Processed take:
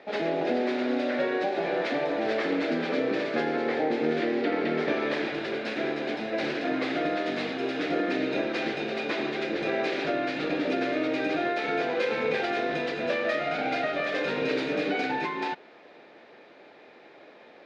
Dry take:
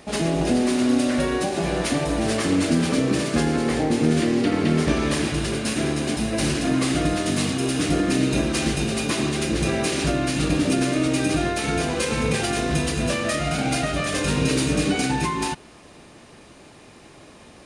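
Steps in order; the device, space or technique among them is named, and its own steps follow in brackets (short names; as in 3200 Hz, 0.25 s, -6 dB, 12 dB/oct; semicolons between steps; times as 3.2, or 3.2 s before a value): phone earpiece (speaker cabinet 440–3400 Hz, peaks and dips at 480 Hz +3 dB, 1100 Hz -9 dB, 2900 Hz -8 dB)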